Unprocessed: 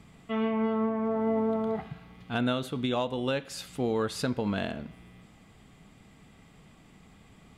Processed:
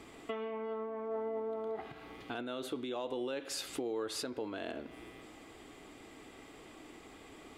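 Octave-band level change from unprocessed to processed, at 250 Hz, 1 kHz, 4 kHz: -13.0 dB, -9.0 dB, -5.5 dB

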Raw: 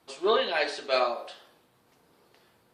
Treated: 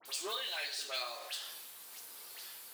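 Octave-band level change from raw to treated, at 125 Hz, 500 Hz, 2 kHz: no reading, -20.0 dB, -10.0 dB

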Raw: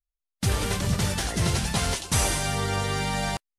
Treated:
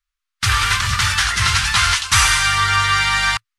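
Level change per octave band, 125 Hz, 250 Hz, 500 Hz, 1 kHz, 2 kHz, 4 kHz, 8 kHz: +3.0 dB, -8.5 dB, -9.5 dB, +12.5 dB, +16.5 dB, +13.5 dB, +8.5 dB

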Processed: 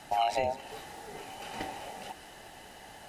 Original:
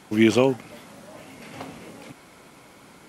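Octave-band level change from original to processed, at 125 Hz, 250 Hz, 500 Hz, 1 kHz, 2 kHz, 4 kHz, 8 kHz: -17.5 dB, -24.5 dB, -10.0 dB, +4.0 dB, -9.5 dB, -6.0 dB, -6.0 dB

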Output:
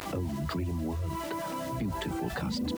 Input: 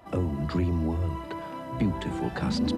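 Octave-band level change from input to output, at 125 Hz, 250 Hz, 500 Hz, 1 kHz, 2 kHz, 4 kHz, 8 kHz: -5.0 dB, -5.0 dB, -3.0 dB, -0.5 dB, -0.5 dB, -1.0 dB, no reading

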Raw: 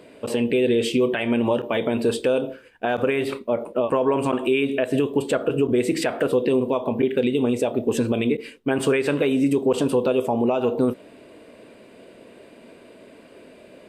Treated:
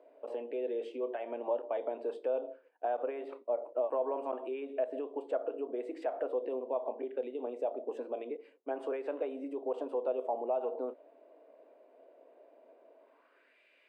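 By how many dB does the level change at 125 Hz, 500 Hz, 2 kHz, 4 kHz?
under -40 dB, -12.5 dB, -23.5 dB, under -25 dB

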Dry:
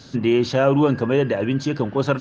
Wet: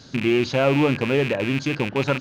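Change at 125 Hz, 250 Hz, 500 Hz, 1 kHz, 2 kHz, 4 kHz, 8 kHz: -2.0 dB, -2.0 dB, -2.0 dB, -2.0 dB, +4.5 dB, +2.5 dB, no reading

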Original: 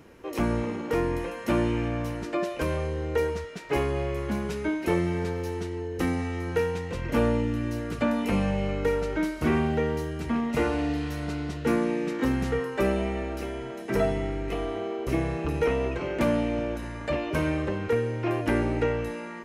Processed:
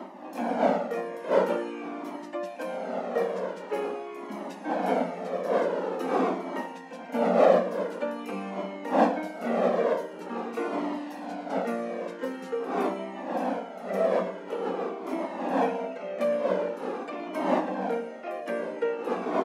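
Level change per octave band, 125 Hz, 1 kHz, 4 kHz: -14.5 dB, +4.5 dB, -5.0 dB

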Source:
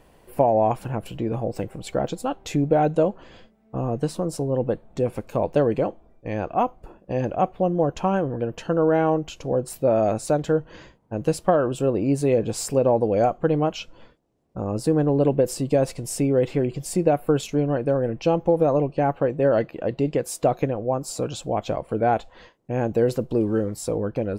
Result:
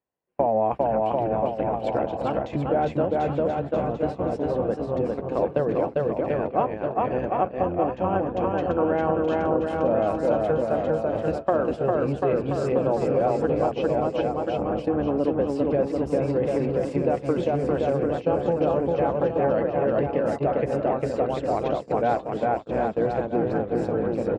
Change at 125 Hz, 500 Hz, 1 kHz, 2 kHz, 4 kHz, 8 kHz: -4.0 dB, -0.5 dB, +0.5 dB, 0.0 dB, no reading, under -15 dB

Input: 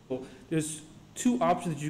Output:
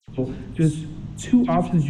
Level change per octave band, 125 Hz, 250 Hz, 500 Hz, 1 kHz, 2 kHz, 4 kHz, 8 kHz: +14.0 dB, +10.0 dB, +4.0 dB, +2.5 dB, +2.0 dB, +2.0 dB, -2.5 dB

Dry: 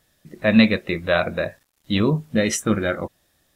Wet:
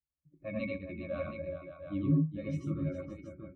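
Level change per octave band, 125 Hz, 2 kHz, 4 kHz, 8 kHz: -7.5 dB, -23.0 dB, under -30 dB, under -35 dB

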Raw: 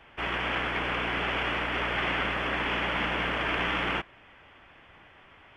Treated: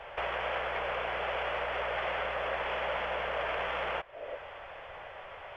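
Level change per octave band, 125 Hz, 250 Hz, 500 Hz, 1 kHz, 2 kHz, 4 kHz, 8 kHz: -11.5 dB, -16.5 dB, +1.5 dB, -2.5 dB, -6.5 dB, -8.0 dB, no reading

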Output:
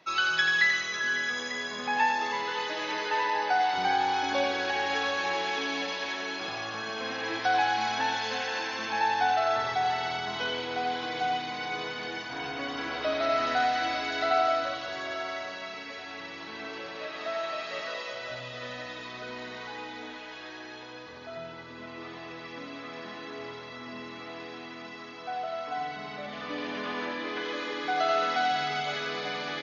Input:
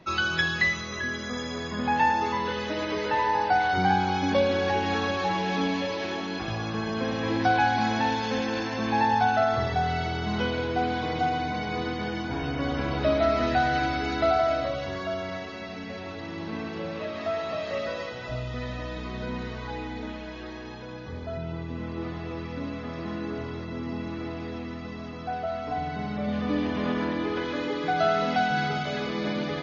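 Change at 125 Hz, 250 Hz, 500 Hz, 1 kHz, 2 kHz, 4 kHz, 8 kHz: -17.0 dB, -11.0 dB, -5.0 dB, -2.0 dB, +0.5 dB, +1.5 dB, no reading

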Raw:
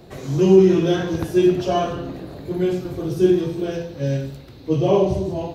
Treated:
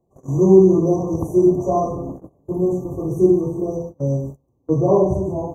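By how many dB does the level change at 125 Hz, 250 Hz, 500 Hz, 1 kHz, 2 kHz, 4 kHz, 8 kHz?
+1.5 dB, +1.5 dB, +1.5 dB, +1.5 dB, under -40 dB, under -40 dB, no reading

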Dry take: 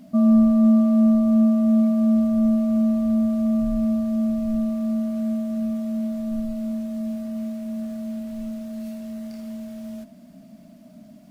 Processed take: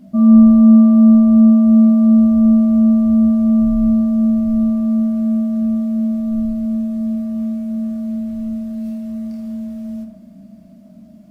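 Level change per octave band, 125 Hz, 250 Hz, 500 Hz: no reading, +8.0 dB, +0.5 dB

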